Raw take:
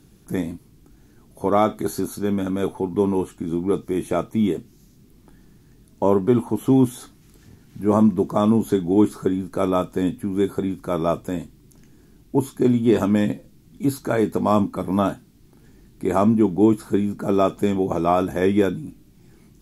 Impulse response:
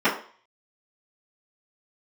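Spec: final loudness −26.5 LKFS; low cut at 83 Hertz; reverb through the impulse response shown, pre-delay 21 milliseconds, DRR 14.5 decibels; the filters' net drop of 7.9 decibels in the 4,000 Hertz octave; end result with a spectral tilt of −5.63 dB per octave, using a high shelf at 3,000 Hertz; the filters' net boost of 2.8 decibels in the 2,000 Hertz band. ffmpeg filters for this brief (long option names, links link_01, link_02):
-filter_complex "[0:a]highpass=83,equalizer=frequency=2000:width_type=o:gain=8,highshelf=frequency=3000:gain=-8.5,equalizer=frequency=4000:width_type=o:gain=-6.5,asplit=2[link_01][link_02];[1:a]atrim=start_sample=2205,adelay=21[link_03];[link_02][link_03]afir=irnorm=-1:irlink=0,volume=-32.5dB[link_04];[link_01][link_04]amix=inputs=2:normalize=0,volume=-5dB"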